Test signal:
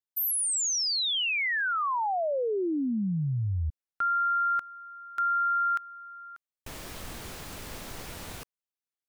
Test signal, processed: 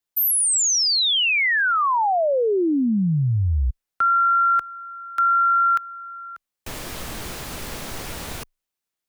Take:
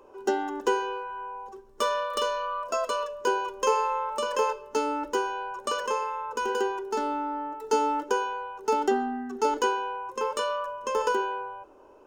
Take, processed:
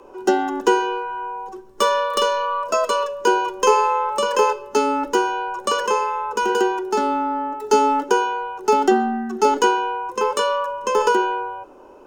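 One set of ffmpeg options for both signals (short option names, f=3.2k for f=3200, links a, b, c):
-af "afreqshift=-16,volume=8.5dB"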